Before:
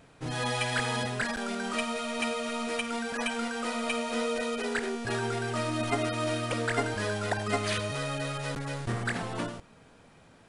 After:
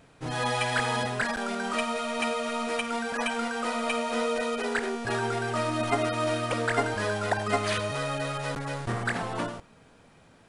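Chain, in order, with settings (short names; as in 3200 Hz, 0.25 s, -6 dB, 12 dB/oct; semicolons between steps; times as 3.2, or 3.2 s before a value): dynamic EQ 920 Hz, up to +5 dB, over -46 dBFS, Q 0.72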